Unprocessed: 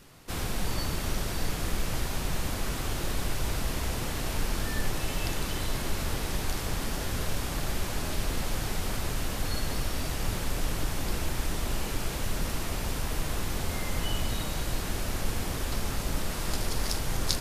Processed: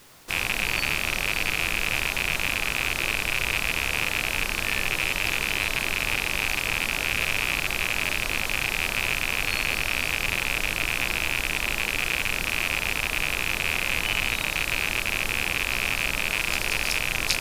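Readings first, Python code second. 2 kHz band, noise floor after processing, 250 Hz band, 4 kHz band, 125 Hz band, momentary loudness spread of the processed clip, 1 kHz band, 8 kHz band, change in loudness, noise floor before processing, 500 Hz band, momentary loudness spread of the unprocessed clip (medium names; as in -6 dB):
+15.5 dB, -31 dBFS, -2.5 dB, +9.0 dB, -4.5 dB, 1 LU, +4.5 dB, +4.0 dB, +8.5 dB, -34 dBFS, +1.0 dB, 1 LU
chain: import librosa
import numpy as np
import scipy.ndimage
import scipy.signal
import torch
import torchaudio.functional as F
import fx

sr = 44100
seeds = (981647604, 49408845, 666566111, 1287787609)

y = fx.rattle_buzz(x, sr, strikes_db=-41.0, level_db=-14.0)
y = fx.low_shelf(y, sr, hz=330.0, db=-9.5)
y = fx.dmg_noise_colour(y, sr, seeds[0], colour='white', level_db=-60.0)
y = y * 10.0 ** (3.5 / 20.0)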